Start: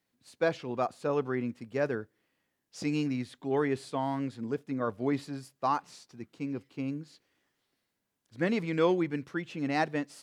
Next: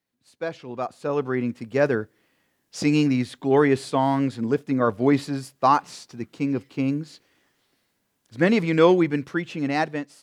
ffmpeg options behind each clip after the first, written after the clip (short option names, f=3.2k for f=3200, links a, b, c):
-af "dynaudnorm=f=500:g=5:m=14dB,volume=-2.5dB"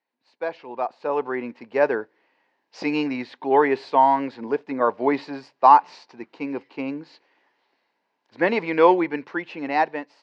-af "highpass=400,equalizer=f=910:t=q:w=4:g=9,equalizer=f=1.3k:t=q:w=4:g=-5,equalizer=f=3.4k:t=q:w=4:g=-8,lowpass=f=4.1k:w=0.5412,lowpass=f=4.1k:w=1.3066,volume=2dB"